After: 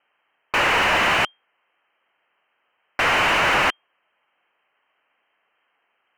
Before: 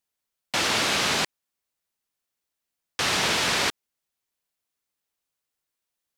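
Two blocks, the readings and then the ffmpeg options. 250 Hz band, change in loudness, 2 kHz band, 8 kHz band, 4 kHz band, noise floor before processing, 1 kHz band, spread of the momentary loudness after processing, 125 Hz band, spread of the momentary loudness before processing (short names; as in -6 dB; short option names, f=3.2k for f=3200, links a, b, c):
+1.5 dB, +4.5 dB, +7.5 dB, -7.0 dB, 0.0 dB, -84 dBFS, +8.5 dB, 8 LU, +2.5 dB, 8 LU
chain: -filter_complex "[0:a]lowpass=f=2.7k:t=q:w=0.5098,lowpass=f=2.7k:t=q:w=0.6013,lowpass=f=2.7k:t=q:w=0.9,lowpass=f=2.7k:t=q:w=2.563,afreqshift=-3200,asplit=2[a][b];[b]highpass=f=720:p=1,volume=29dB,asoftclip=type=tanh:threshold=-13.5dB[c];[a][c]amix=inputs=2:normalize=0,lowpass=f=1.4k:p=1,volume=-6dB,volume=4.5dB"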